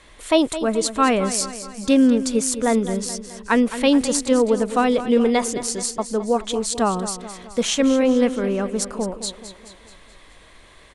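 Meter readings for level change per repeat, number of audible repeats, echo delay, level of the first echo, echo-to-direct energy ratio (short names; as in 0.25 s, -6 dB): -5.5 dB, 5, 0.214 s, -12.5 dB, -11.0 dB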